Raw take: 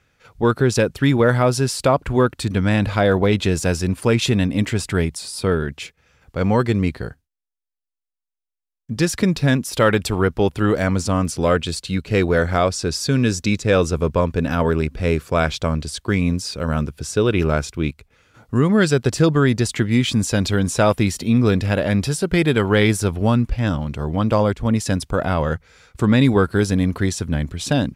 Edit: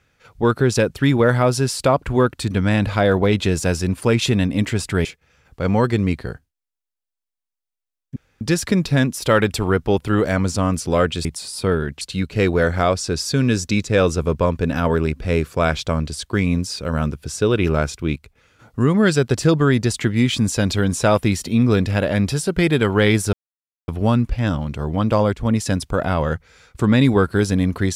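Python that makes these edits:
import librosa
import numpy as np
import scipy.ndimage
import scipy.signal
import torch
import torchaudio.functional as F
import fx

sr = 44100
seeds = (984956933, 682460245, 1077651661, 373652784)

y = fx.edit(x, sr, fx.move(start_s=5.05, length_s=0.76, to_s=11.76),
    fx.insert_room_tone(at_s=8.92, length_s=0.25),
    fx.insert_silence(at_s=23.08, length_s=0.55), tone=tone)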